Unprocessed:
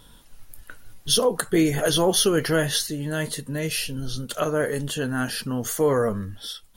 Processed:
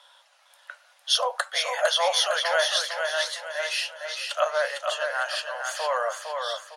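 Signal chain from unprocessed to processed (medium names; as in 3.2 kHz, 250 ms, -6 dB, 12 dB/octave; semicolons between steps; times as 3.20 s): steep high-pass 550 Hz 96 dB/octave; distance through air 93 m; feedback delay 456 ms, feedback 38%, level -5 dB; trim +3 dB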